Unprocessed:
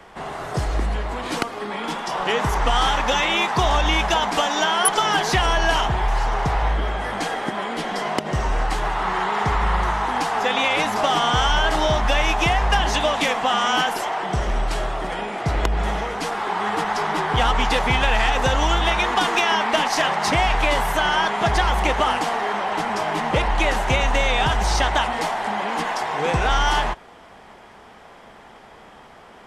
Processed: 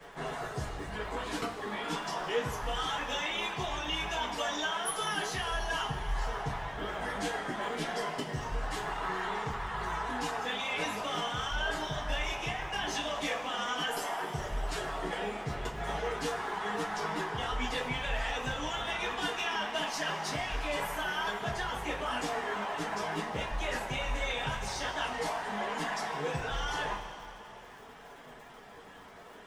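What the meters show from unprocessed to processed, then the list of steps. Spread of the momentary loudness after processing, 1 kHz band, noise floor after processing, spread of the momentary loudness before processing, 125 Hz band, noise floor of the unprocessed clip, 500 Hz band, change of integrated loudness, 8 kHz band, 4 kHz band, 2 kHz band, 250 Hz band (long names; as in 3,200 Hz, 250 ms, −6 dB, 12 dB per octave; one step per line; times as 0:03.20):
5 LU, −14.0 dB, −51 dBFS, 7 LU, −14.5 dB, −46 dBFS, −12.0 dB, −13.0 dB, −12.0 dB, −12.0 dB, −11.5 dB, −11.5 dB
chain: reverb reduction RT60 1.3 s
reversed playback
downward compressor, threshold −28 dBFS, peak gain reduction 14 dB
reversed playback
surface crackle 49 per second −41 dBFS
flanger 0.5 Hz, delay 6.7 ms, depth 4.4 ms, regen −38%
coupled-rooms reverb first 0.23 s, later 3.2 s, from −18 dB, DRR −9 dB
level −8 dB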